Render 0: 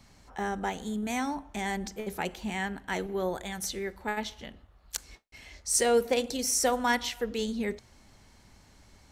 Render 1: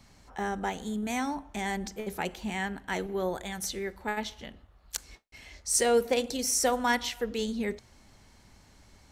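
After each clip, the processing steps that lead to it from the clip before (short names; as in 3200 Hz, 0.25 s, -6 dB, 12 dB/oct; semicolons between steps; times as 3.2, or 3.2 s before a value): nothing audible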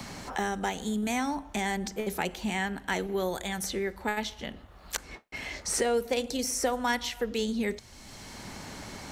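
three-band squash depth 70%; gain +1 dB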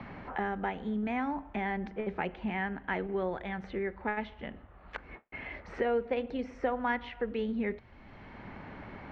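LPF 2400 Hz 24 dB/oct; gain -2.5 dB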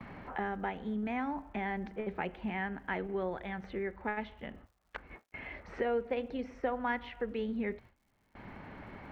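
gate with hold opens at -39 dBFS; crackle 170/s -61 dBFS; gain -2.5 dB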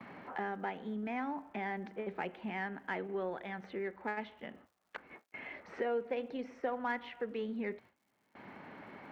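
HPF 200 Hz 12 dB/oct; in parallel at -8 dB: soft clip -32 dBFS, distortion -12 dB; on the sum: gain -4 dB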